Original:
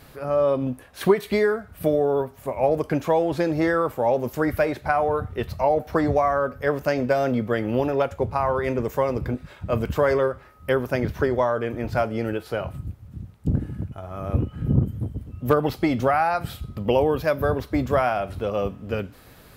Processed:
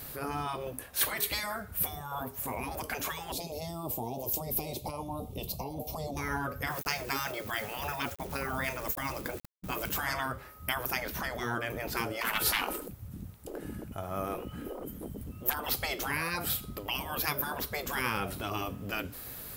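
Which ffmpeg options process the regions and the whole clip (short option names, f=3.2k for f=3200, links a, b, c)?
-filter_complex "[0:a]asettb=1/sr,asplit=3[a][b][c];[a]atrim=end=3.324[d];[b]atrim=start=3.32:end=6.17,asetpts=PTS-STARTPTS,afade=t=in:d=0.004:c=qsin,afade=t=out:st=2.846:d=0.004:c=qsin,acompressor=threshold=-24dB:ratio=3:attack=3.2:release=140:knee=1:detection=peak,asuperstop=centerf=1600:order=4:qfactor=0.72[e];[c]atrim=start=6.166[f];[d][e]acrossfade=d=0.004:c1=hsin:c2=qsin[g];[g][f]acrossfade=d=0.004:c1=qsin:c2=hsin,asettb=1/sr,asplit=3[h][i][j];[h]atrim=end=6.684[k];[i]atrim=start=6.68:end=9.98,asetpts=PTS-STARTPTS,afade=t=in:d=0.004:c=qsin,afade=t=out:st=3.296:d=0.004:c=qsin,bandreject=f=50:t=h:w=6,bandreject=f=100:t=h:w=6,bandreject=f=150:t=h:w=6,bandreject=f=200:t=h:w=6,agate=range=-33dB:threshold=-32dB:ratio=3:release=100:detection=peak,aeval=exprs='val(0)*gte(abs(val(0)),0.00562)':c=same[l];[j]atrim=start=9.976[m];[k][l]acrossfade=d=0.004:c1=hsin:c2=qsin[n];[n][m]acrossfade=d=0.004:c1=qsin:c2=hsin,asettb=1/sr,asplit=3[o][p][q];[o]atrim=end=12.214[r];[p]atrim=start=12.21:end=12.88,asetpts=PTS-STARTPTS,afade=t=in:d=0.004:c=qsin,afade=t=out:st=0.666:d=0.004:c=qsin,equalizer=f=130:t=o:w=1.2:g=15,aecho=1:1:2.2:0.44,atrim=end_sample=29547,aeval=exprs='0.335*sin(PI/2*2*val(0)/0.335)':c=same[s];[q]atrim=start=12.876[t];[r][s]acrossfade=d=0.004:c1=hsin:c2=qsin[u];[u][t]acrossfade=d=0.004:c1=qsin:c2=hsin,afftfilt=real='re*lt(hypot(re,im),0.158)':imag='im*lt(hypot(re,im),0.158)':win_size=1024:overlap=0.75,aemphasis=mode=production:type=50fm"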